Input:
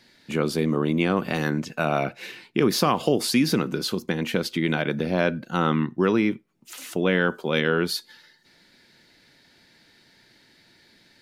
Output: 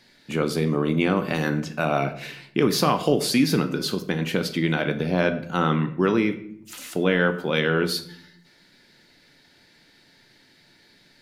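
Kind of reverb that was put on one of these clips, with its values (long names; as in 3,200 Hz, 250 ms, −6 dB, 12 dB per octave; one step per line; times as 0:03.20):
rectangular room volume 120 cubic metres, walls mixed, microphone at 0.34 metres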